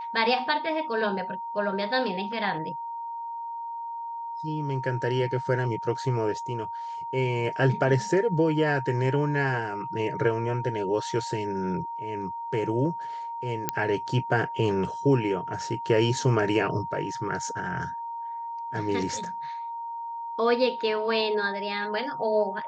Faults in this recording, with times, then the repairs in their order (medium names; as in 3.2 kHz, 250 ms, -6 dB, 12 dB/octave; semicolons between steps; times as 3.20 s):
whine 930 Hz -32 dBFS
13.69 s: pop -8 dBFS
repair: de-click; band-stop 930 Hz, Q 30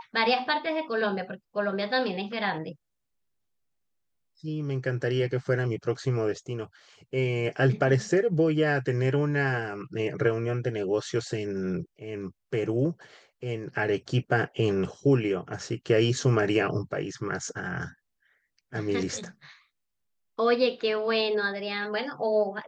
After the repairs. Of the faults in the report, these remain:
nothing left